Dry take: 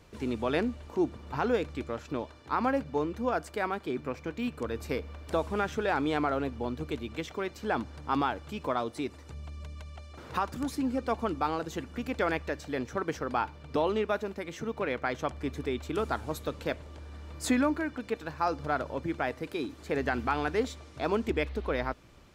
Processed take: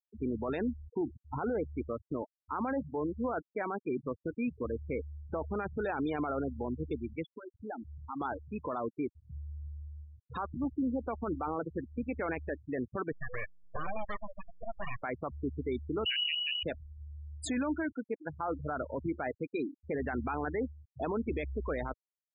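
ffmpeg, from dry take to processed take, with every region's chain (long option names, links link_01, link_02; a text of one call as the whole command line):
ffmpeg -i in.wav -filter_complex "[0:a]asettb=1/sr,asplit=3[link_01][link_02][link_03];[link_01]atrim=end=1.014[link_04];[link_02]atrim=start=1.01:end=1.55,asetpts=PTS-STARTPTS,afade=type=in:duration=0.004:curve=qsin,afade=type=out:start_time=0.536:duration=0.004:curve=qsin,agate=range=-33dB:threshold=-42dB:ratio=3:release=100:detection=peak,acompressor=threshold=-26dB:ratio=10:attack=3.2:release=140:knee=1:detection=peak[link_05];[link_03]atrim=start=1.546[link_06];[link_04][link_05]acrossfade=duration=0.004:curve1=hsin:curve2=qsin[link_07];[link_07][link_06]acrossfade=duration=0.004:curve1=qsin:curve2=hsin,asettb=1/sr,asplit=3[link_08][link_09][link_10];[link_08]atrim=end=7.264[link_11];[link_09]atrim=start=7.26:end=8.21,asetpts=PTS-STARTPTS,afade=type=in:duration=0.004:curve=qsin,afade=type=out:start_time=0.946:duration=0.004:curve=qsin,acompressor=threshold=-42dB:ratio=2:attack=3.2:release=140:knee=1:detection=peak,lowshelf=frequency=63:gain=3.5,bandreject=frequency=390:width=12[link_12];[link_10]atrim=start=8.206[link_13];[link_11][link_12]acrossfade=duration=0.004:curve1=hsin:curve2=qsin[link_14];[link_14][link_13]acrossfade=duration=0.004:curve1=qsin:curve2=hsin,asettb=1/sr,asplit=3[link_15][link_16][link_17];[link_15]atrim=end=13.124[link_18];[link_16]atrim=start=13.12:end=15.03,asetpts=PTS-STARTPTS,afade=type=in:duration=0.004:curve=qsin,afade=type=out:start_time=1.906:duration=0.004:curve=qsin,aeval=exprs='abs(val(0))':channel_layout=same,lowshelf=frequency=440:gain=-5,aecho=1:1:1.7:0.44,atrim=end_sample=84231[link_19];[link_17]atrim=start=15.026[link_20];[link_18][link_19]acrossfade=duration=0.004:curve1=hsin:curve2=qsin[link_21];[link_21][link_20]acrossfade=duration=0.004:curve1=qsin:curve2=hsin,asettb=1/sr,asplit=3[link_22][link_23][link_24];[link_22]atrim=end=16.054[link_25];[link_23]atrim=start=16.05:end=16.63,asetpts=PTS-STARTPTS,afade=type=in:duration=0.004:curve=qsin,afade=type=out:start_time=0.576:duration=0.004:curve=qsin,highpass=frequency=81:poles=1,aemphasis=mode=reproduction:type=riaa,lowpass=frequency=2600:width_type=q:width=0.5098,lowpass=frequency=2600:width_type=q:width=0.6013,lowpass=frequency=2600:width_type=q:width=0.9,lowpass=frequency=2600:width_type=q:width=2.563,afreqshift=-3000[link_26];[link_24]atrim=start=16.626[link_27];[link_25][link_26]acrossfade=duration=0.004:curve1=hsin:curve2=qsin[link_28];[link_28][link_27]acrossfade=duration=0.004:curve1=qsin:curve2=hsin,afftfilt=real='re*gte(hypot(re,im),0.0398)':imag='im*gte(hypot(re,im),0.0398)':win_size=1024:overlap=0.75,alimiter=level_in=1.5dB:limit=-24dB:level=0:latency=1:release=13,volume=-1.5dB" out.wav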